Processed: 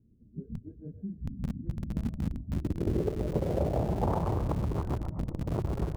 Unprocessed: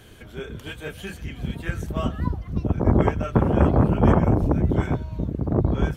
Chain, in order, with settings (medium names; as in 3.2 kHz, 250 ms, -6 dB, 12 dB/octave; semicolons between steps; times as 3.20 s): local Wiener filter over 41 samples; dynamic bell 250 Hz, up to -6 dB, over -34 dBFS, Q 3; two-band feedback delay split 410 Hz, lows 294 ms, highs 126 ms, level -8.5 dB; spectral noise reduction 14 dB; low-pass sweep 230 Hz -> 1.1 kHz, 2.21–4.42 s; in parallel at -9 dB: Schmitt trigger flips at -21.5 dBFS; on the sum: compression 2:1, threshold -32 dBFS, peak gain reduction 12 dB; trim -2.5 dB